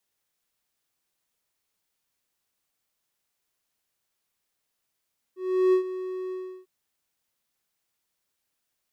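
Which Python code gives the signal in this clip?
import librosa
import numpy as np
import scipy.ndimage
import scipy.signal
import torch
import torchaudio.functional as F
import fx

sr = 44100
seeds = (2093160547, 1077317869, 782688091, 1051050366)

y = fx.adsr_tone(sr, wave='triangle', hz=371.0, attack_ms=370.0, decay_ms=98.0, sustain_db=-14.0, held_s=0.96, release_ms=338.0, level_db=-14.0)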